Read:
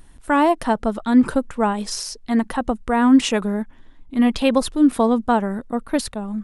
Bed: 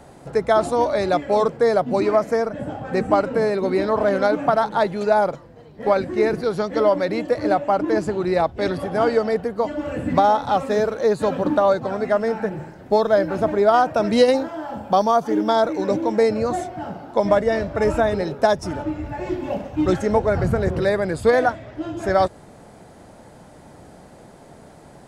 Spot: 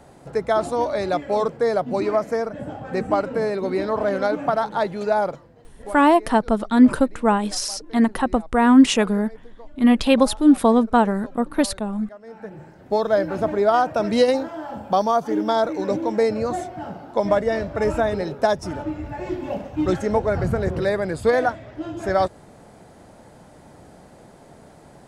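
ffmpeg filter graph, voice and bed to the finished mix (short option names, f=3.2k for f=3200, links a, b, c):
-filter_complex "[0:a]adelay=5650,volume=1.5dB[a];[1:a]volume=18dB,afade=t=out:st=5.31:d=0.7:silence=0.1,afade=t=in:st=12.22:d=0.9:silence=0.0891251[b];[a][b]amix=inputs=2:normalize=0"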